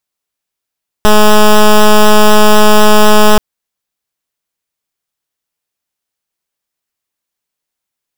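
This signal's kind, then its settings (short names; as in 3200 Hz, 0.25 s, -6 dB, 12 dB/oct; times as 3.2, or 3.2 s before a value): pulse 212 Hz, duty 10% -3.5 dBFS 2.33 s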